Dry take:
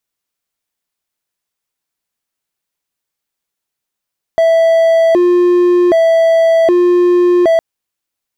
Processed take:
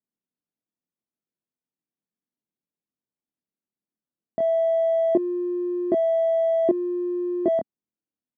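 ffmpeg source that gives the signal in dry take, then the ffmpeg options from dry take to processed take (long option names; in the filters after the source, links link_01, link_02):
-f lavfi -i "aevalsrc='0.596*(1-4*abs(mod((506*t+152/0.65*(0.5-abs(mod(0.65*t,1)-0.5)))+0.25,1)-0.5))':duration=3.21:sample_rate=44100"
-filter_complex "[0:a]bandpass=frequency=230:width_type=q:width=2:csg=0,asplit=2[link_01][link_02];[link_02]adelay=24,volume=-3dB[link_03];[link_01][link_03]amix=inputs=2:normalize=0"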